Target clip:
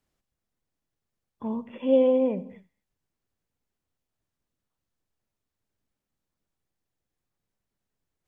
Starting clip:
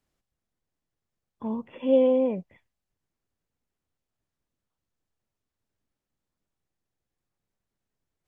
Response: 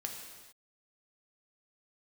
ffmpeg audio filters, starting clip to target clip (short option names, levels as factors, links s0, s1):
-filter_complex "[0:a]asplit=2[s0][s1];[s1]equalizer=f=230:t=o:w=0.87:g=9[s2];[1:a]atrim=start_sample=2205,afade=t=out:st=0.24:d=0.01,atrim=end_sample=11025,adelay=80[s3];[s2][s3]afir=irnorm=-1:irlink=0,volume=0.126[s4];[s0][s4]amix=inputs=2:normalize=0"